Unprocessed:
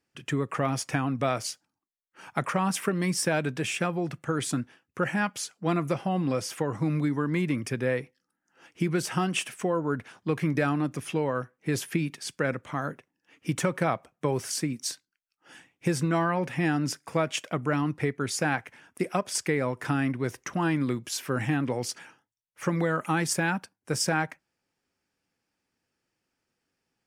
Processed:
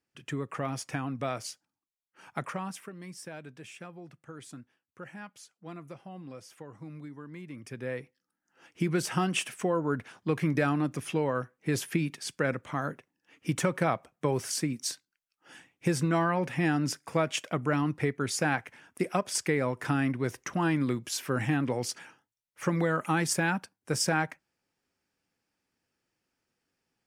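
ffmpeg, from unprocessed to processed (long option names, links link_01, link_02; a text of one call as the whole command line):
ffmpeg -i in.wav -af "volume=10dB,afade=type=out:start_time=2.38:duration=0.49:silence=0.281838,afade=type=in:start_time=7.48:duration=0.43:silence=0.354813,afade=type=in:start_time=7.91:duration=1.09:silence=0.446684" out.wav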